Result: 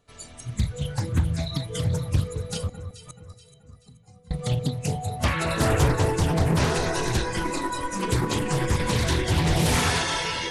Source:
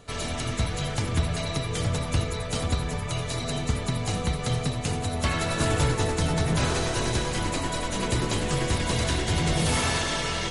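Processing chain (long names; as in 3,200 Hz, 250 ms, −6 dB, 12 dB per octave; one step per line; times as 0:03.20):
noise reduction from a noise print of the clip's start 19 dB
0:02.68–0:04.31: gate with flip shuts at −30 dBFS, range −26 dB
delay that swaps between a low-pass and a high-pass 215 ms, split 1,900 Hz, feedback 63%, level −9 dB
highs frequency-modulated by the lows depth 0.49 ms
level +3 dB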